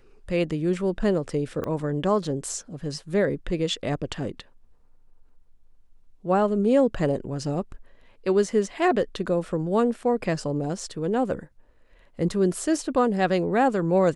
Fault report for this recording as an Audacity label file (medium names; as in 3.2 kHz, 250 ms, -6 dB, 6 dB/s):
1.640000	1.640000	pop -18 dBFS